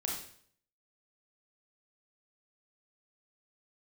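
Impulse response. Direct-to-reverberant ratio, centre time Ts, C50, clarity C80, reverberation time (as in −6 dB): −2.0 dB, 41 ms, 3.0 dB, 7.5 dB, 0.60 s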